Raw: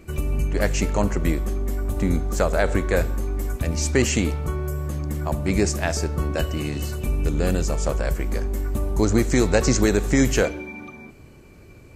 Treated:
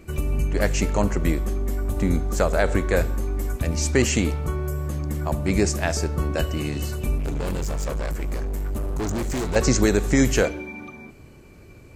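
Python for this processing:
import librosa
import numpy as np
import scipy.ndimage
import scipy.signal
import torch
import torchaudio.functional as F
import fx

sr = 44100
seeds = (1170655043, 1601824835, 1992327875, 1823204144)

y = fx.clip_hard(x, sr, threshold_db=-23.5, at=(7.18, 9.56))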